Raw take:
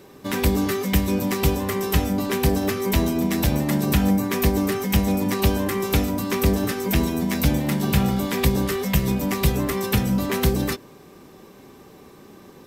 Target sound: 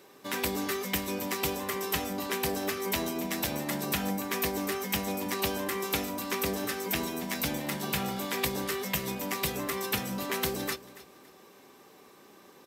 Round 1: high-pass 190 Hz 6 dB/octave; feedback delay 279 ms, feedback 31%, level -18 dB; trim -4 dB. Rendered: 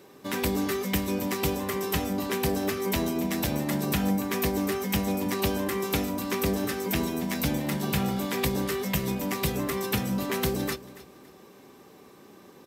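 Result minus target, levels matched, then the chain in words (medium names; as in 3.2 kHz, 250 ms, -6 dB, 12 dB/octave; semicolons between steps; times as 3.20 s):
250 Hz band +3.5 dB
high-pass 620 Hz 6 dB/octave; feedback delay 279 ms, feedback 31%, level -18 dB; trim -4 dB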